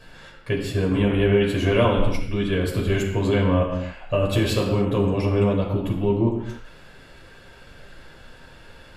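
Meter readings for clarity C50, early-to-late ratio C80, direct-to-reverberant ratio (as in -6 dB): 4.5 dB, 6.0 dB, -3.5 dB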